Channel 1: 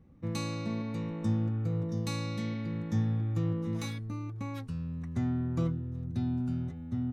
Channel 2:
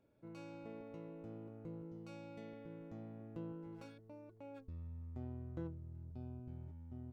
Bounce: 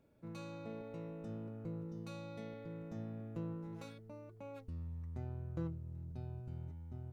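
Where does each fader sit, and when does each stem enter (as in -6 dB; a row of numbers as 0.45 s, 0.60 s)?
-19.0 dB, +3.0 dB; 0.00 s, 0.00 s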